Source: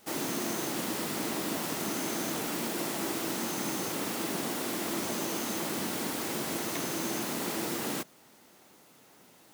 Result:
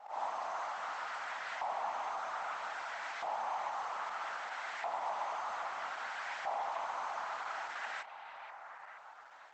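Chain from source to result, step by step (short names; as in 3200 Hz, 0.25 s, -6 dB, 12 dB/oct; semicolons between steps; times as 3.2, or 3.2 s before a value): resonant low shelf 500 Hz -12 dB, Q 3; auto swell 0.208 s; compressor 6:1, threshold -36 dBFS, peak gain reduction 7 dB; soft clip -35 dBFS, distortion -16 dB; LFO band-pass saw up 0.62 Hz 830–1800 Hz; on a send: delay with a stepping band-pass 0.476 s, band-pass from 2800 Hz, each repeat -0.7 oct, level -8.5 dB; on the sum: gain +10 dB; Opus 12 kbps 48000 Hz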